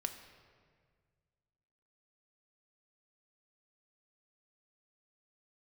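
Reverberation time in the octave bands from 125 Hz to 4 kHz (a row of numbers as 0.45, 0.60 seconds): 2.5, 2.1, 1.9, 1.7, 1.6, 1.2 seconds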